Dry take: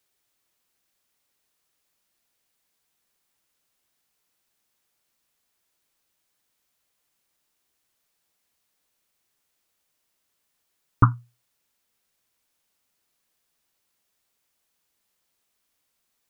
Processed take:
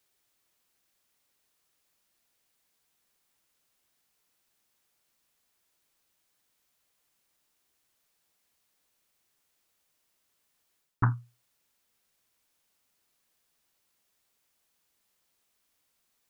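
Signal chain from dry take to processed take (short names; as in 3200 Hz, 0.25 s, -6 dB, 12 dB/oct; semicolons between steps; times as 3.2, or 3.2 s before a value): reverse; compressor 5:1, threshold -23 dBFS, peak gain reduction 12 dB; reverse; Doppler distortion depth 0.33 ms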